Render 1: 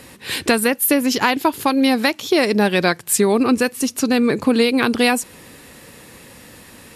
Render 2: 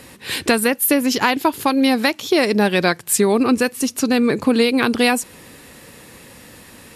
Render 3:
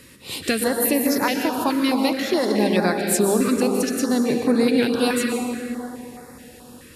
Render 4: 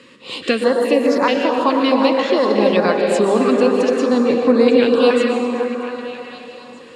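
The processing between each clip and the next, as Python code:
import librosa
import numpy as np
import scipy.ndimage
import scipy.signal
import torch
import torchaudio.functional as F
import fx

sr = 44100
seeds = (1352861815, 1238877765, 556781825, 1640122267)

y1 = x
y2 = fx.rev_plate(y1, sr, seeds[0], rt60_s=3.1, hf_ratio=0.45, predelay_ms=110, drr_db=1.5)
y2 = fx.filter_held_notch(y2, sr, hz=4.7, low_hz=770.0, high_hz=3000.0)
y2 = y2 * librosa.db_to_amplitude(-4.5)
y3 = fx.cabinet(y2, sr, low_hz=190.0, low_slope=12, high_hz=6600.0, hz=(240.0, 510.0, 1100.0, 2900.0, 5800.0), db=(4, 8, 9, 6, -8))
y3 = fx.echo_stepped(y3, sr, ms=261, hz=510.0, octaves=0.7, feedback_pct=70, wet_db=-3.0)
y3 = y3 * librosa.db_to_amplitude(1.0)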